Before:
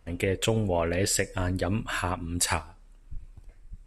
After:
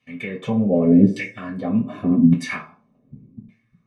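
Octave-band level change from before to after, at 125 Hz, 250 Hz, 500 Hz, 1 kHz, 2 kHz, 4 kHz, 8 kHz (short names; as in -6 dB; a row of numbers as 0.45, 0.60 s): +6.5 dB, +16.0 dB, +4.0 dB, -3.0 dB, +1.0 dB, n/a, under -15 dB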